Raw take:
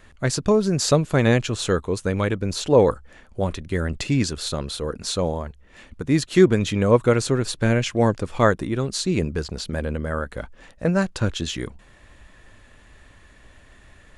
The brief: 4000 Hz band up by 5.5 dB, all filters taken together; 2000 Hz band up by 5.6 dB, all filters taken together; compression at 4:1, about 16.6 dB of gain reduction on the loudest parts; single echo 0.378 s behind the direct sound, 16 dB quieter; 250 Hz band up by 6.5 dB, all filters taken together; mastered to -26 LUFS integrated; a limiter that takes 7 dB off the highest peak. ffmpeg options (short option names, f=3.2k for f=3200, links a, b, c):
-af "equalizer=f=250:t=o:g=8.5,equalizer=f=2k:t=o:g=6,equalizer=f=4k:t=o:g=5,acompressor=threshold=-27dB:ratio=4,alimiter=limit=-20dB:level=0:latency=1,aecho=1:1:378:0.158,volume=5dB"